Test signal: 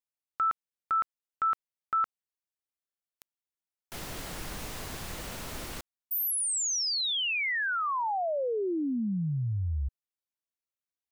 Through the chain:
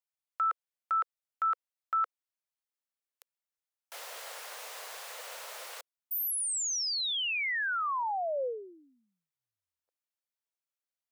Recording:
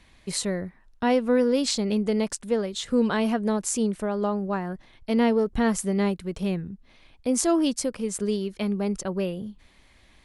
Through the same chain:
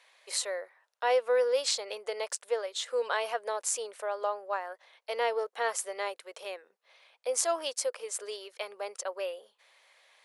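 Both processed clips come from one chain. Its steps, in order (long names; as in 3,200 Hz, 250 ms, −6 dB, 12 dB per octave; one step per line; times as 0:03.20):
elliptic high-pass filter 500 Hz, stop band 70 dB
level −1.5 dB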